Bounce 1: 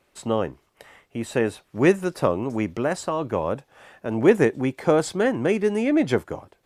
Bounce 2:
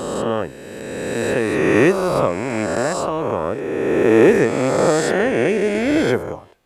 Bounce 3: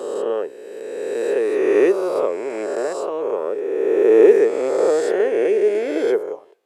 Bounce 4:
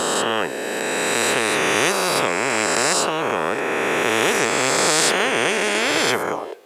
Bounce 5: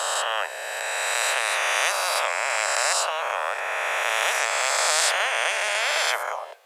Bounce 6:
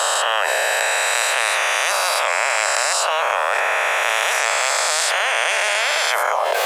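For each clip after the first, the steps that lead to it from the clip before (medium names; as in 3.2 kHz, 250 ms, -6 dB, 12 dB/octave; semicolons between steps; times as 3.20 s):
reverse spectral sustain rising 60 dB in 2.36 s
resonant high-pass 420 Hz, resonance Q 4.5; trim -9 dB
spectrum-flattening compressor 4:1
elliptic high-pass 600 Hz, stop band 80 dB; trim -2.5 dB
level flattener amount 100%; trim +1 dB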